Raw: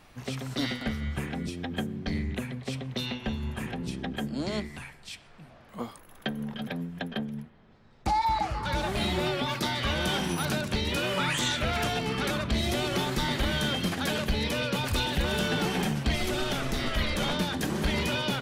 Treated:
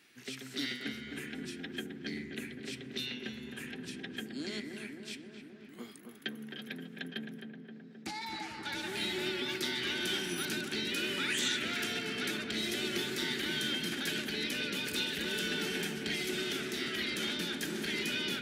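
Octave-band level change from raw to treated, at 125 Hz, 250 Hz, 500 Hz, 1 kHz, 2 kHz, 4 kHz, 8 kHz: -16.0, -7.5, -8.0, -14.5, -3.0, -3.0, -3.0 dB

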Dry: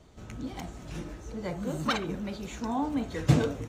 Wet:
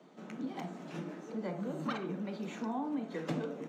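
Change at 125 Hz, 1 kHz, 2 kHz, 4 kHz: -13.5, -6.5, -8.5, -12.0 dB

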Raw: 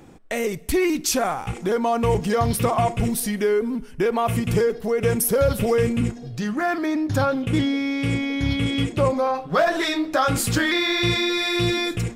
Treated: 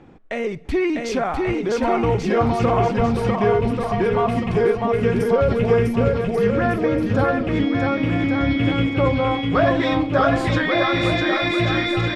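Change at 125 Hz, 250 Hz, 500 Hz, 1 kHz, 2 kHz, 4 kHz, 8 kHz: +3.0 dB, +3.0 dB, +3.0 dB, +2.5 dB, +2.0 dB, -2.5 dB, under -10 dB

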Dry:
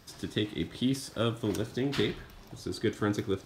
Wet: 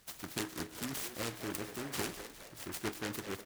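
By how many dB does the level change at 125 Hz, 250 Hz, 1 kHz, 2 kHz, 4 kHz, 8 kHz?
-12.5, -11.0, -3.0, -3.0, -6.5, +3.5 dB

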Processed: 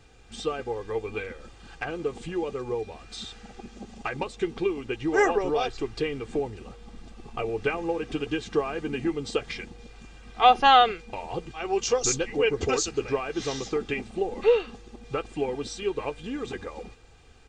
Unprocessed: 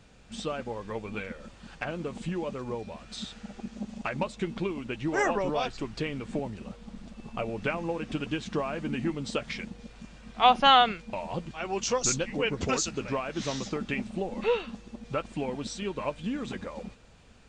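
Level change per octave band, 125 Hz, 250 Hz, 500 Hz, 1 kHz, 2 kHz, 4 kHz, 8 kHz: -2.0, +0.5, +5.5, +3.0, +2.0, -0.5, +1.5 dB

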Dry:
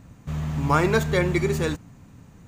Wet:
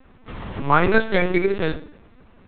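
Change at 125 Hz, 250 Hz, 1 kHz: -4.5, +1.0, +4.5 dB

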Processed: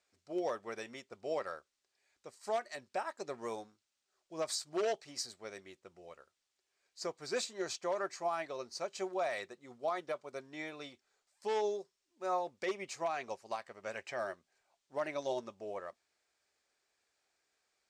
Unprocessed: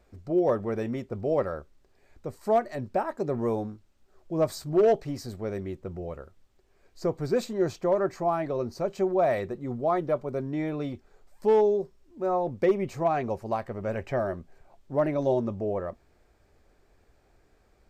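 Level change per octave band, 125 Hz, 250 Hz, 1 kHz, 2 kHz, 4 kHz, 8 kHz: -24.5 dB, -16.5 dB, -8.5 dB, -3.0 dB, +3.0 dB, n/a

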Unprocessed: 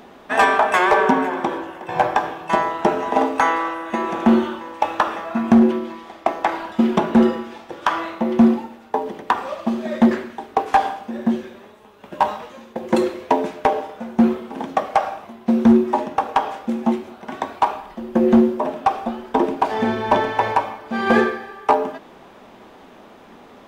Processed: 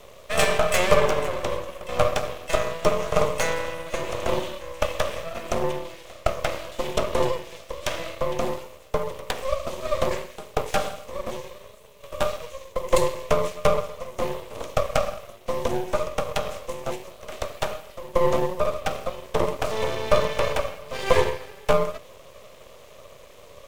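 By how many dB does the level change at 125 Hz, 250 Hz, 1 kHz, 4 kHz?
0.0, -17.5, -9.5, +2.0 dB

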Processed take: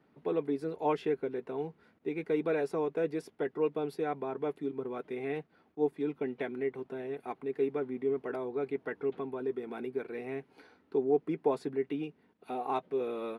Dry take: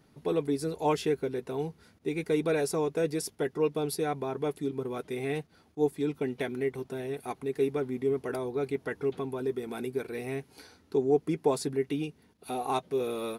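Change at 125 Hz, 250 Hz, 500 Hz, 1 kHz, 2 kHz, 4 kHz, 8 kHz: -8.5 dB, -3.5 dB, -2.5 dB, -2.5 dB, -4.0 dB, under -10 dB, under -20 dB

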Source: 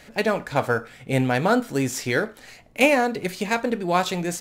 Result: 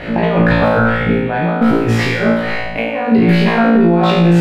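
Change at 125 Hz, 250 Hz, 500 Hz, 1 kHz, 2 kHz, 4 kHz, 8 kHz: +14.5, +13.5, +8.0, +7.5, +7.5, +7.0, -6.0 dB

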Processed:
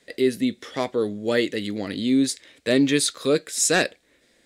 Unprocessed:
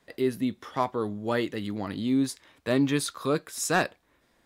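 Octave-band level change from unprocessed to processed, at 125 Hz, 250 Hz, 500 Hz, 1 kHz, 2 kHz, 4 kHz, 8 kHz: 0.0, +5.0, +6.0, -2.0, +5.5, +9.5, +10.0 dB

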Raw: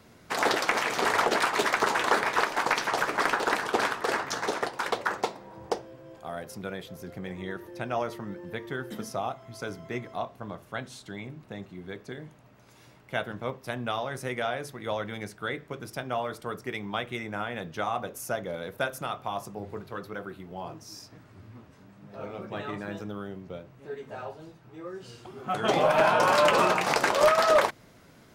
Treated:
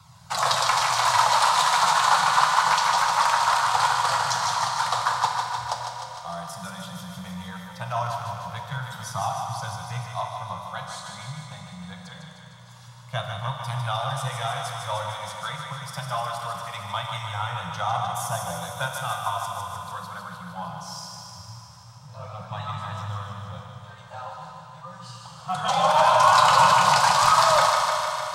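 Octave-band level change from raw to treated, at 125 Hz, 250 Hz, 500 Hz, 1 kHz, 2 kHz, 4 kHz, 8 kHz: +8.0, -5.5, -3.0, +8.5, +1.5, +8.0, +9.5 dB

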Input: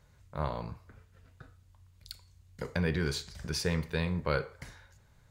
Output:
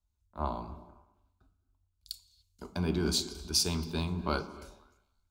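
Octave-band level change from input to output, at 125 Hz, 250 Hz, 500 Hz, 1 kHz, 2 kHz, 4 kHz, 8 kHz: -2.5, +1.0, -2.5, +1.5, -6.0, +6.5, +8.5 dB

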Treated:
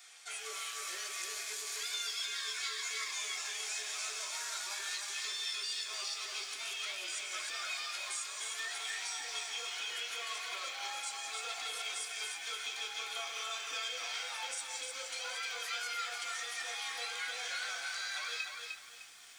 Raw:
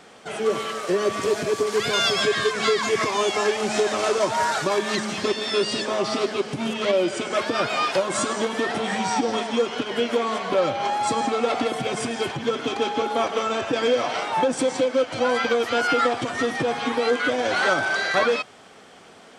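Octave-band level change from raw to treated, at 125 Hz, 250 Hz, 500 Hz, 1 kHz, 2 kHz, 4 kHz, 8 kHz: under -40 dB, under -40 dB, -32.0 dB, -20.5 dB, -13.0 dB, -8.5 dB, -4.5 dB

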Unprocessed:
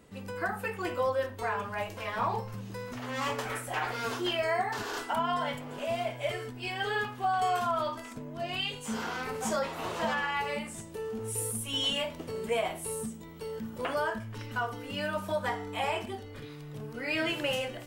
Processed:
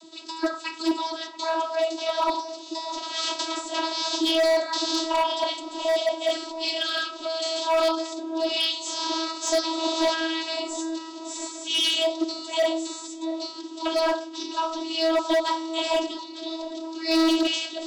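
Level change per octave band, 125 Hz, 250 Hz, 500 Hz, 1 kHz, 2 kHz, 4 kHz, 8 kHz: under -25 dB, +10.5 dB, +7.5 dB, +3.5 dB, +1.0 dB, +11.0 dB, +7.0 dB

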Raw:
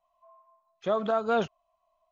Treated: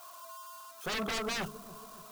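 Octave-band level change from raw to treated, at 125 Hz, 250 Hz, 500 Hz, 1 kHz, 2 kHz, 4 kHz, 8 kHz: -3.0 dB, -5.5 dB, -12.5 dB, -8.5 dB, +3.0 dB, +6.5 dB, n/a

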